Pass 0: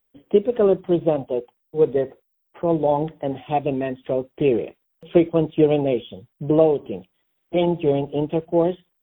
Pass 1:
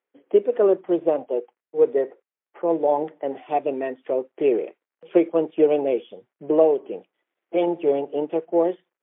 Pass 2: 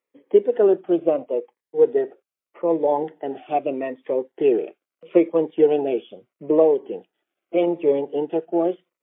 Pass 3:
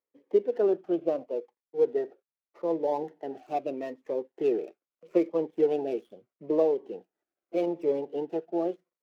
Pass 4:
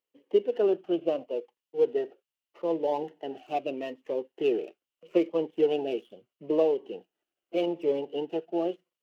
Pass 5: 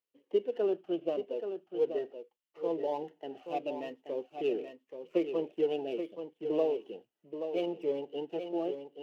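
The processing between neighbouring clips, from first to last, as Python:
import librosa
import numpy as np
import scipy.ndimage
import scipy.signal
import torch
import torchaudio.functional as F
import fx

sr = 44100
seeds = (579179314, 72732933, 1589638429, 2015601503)

y1 = scipy.signal.sosfilt(scipy.signal.cheby1(2, 1.0, [370.0, 2100.0], 'bandpass', fs=sr, output='sos'), x)
y2 = fx.notch_cascade(y1, sr, direction='falling', hz=0.78)
y2 = F.gain(torch.from_numpy(y2), 2.5).numpy()
y3 = scipy.signal.medfilt(y2, 15)
y3 = F.gain(torch.from_numpy(y3), -8.0).numpy()
y4 = fx.peak_eq(y3, sr, hz=2900.0, db=14.5, octaves=0.32)
y5 = y4 + 10.0 ** (-8.0 / 20.0) * np.pad(y4, (int(829 * sr / 1000.0), 0))[:len(y4)]
y5 = F.gain(torch.from_numpy(y5), -5.5).numpy()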